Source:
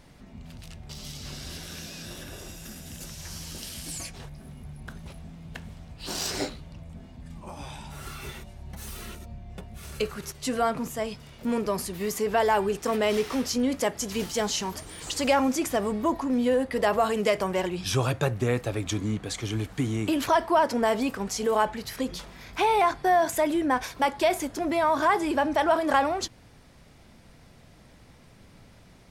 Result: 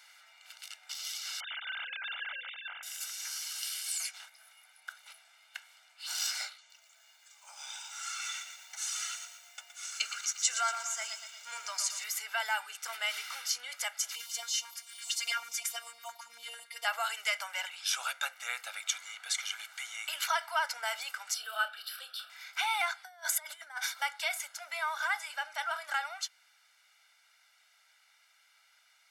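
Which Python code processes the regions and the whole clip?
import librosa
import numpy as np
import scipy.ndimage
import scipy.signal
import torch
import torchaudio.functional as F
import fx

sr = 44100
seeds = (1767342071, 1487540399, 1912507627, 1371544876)

y = fx.chain(x, sr, fx.sine_speech(),
    fx.lowpass(hz=2900.0, slope=12), at=(1.4, 2.83))
y = fx.chain(y, sr, fx.lowpass_res(hz=6900.0, q=3.7),
    fx.echo_crushed(ms=118, feedback_pct=55, bits=9, wet_db=-8.5), at=(6.58, 12.04))
y = fx.chain(y, sr, fx.filter_lfo_notch(shape='square', hz=9.0, low_hz=770.0, high_hz=1600.0, q=0.8),
    fx.robotise(hz=233.0), at=(14.15, 16.85))
y = fx.chain(y, sr, fx.fixed_phaser(hz=1400.0, stages=8),
    fx.doubler(ms=30.0, db=-9.5), at=(21.34, 22.3))
y = fx.chain(y, sr, fx.peak_eq(hz=2600.0, db=-9.5, octaves=0.25),
    fx.over_compress(threshold_db=-28.0, ratio=-0.5), at=(23.04, 24.02))
y = scipy.signal.sosfilt(scipy.signal.butter(4, 1200.0, 'highpass', fs=sr, output='sos'), y)
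y = y + 0.83 * np.pad(y, (int(1.4 * sr / 1000.0), 0))[:len(y)]
y = fx.rider(y, sr, range_db=4, speed_s=2.0)
y = y * librosa.db_to_amplitude(-2.5)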